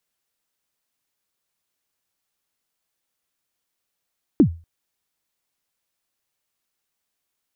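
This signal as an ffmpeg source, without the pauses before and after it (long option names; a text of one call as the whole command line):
ffmpeg -f lavfi -i "aevalsrc='0.501*pow(10,-3*t/0.32)*sin(2*PI*(350*0.089/log(83/350)*(exp(log(83/350)*min(t,0.089)/0.089)-1)+83*max(t-0.089,0)))':duration=0.24:sample_rate=44100" out.wav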